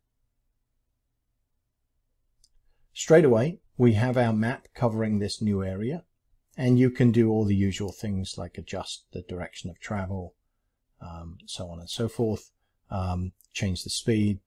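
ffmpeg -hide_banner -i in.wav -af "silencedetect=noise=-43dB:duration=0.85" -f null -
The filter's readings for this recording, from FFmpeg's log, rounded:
silence_start: 0.00
silence_end: 2.44 | silence_duration: 2.44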